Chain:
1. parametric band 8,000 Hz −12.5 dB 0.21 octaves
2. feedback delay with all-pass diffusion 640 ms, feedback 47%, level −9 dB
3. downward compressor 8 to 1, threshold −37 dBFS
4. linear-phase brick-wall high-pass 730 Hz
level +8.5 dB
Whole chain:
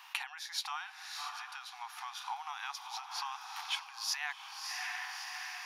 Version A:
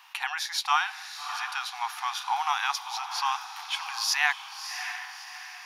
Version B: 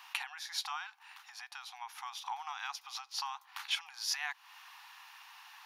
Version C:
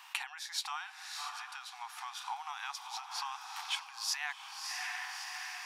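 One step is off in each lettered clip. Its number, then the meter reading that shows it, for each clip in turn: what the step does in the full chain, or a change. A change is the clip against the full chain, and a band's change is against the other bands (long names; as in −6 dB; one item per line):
3, change in crest factor −2.5 dB
2, change in momentary loudness spread +10 LU
1, 8 kHz band +1.5 dB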